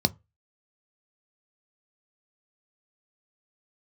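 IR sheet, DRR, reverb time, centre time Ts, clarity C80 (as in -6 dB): 11.5 dB, not exponential, 3 ms, 35.5 dB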